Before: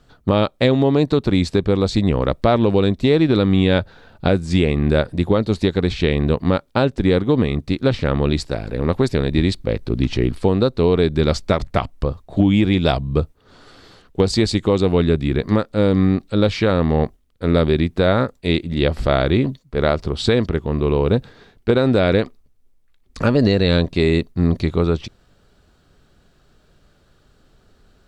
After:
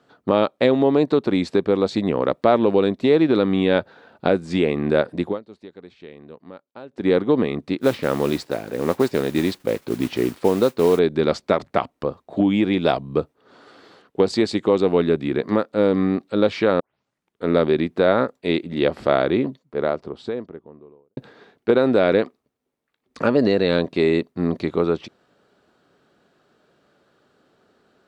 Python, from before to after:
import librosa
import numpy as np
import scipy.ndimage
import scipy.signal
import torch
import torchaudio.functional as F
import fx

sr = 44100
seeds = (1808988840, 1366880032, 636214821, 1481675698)

y = fx.mod_noise(x, sr, seeds[0], snr_db=17, at=(7.8, 10.99))
y = fx.studio_fade_out(y, sr, start_s=19.03, length_s=2.14)
y = fx.edit(y, sr, fx.fade_down_up(start_s=5.21, length_s=1.88, db=-21.0, fade_s=0.19),
    fx.tape_start(start_s=16.8, length_s=0.65), tone=tone)
y = scipy.signal.sosfilt(scipy.signal.butter(2, 260.0, 'highpass', fs=sr, output='sos'), y)
y = fx.high_shelf(y, sr, hz=3200.0, db=-11.0)
y = y * librosa.db_to_amplitude(1.0)